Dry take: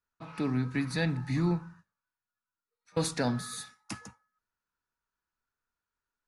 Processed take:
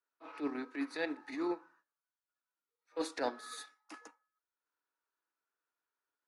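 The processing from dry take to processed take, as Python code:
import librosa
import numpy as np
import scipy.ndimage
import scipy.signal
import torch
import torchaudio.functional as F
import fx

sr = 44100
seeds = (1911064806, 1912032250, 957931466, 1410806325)

y = scipy.signal.sosfilt(scipy.signal.cheby1(5, 1.0, 290.0, 'highpass', fs=sr, output='sos'), x)
y = fx.high_shelf(y, sr, hz=4100.0, db=-11.5)
y = fx.transient(y, sr, attack_db=-11, sustain_db=-7)
y = y * 10.0 ** (1.5 / 20.0)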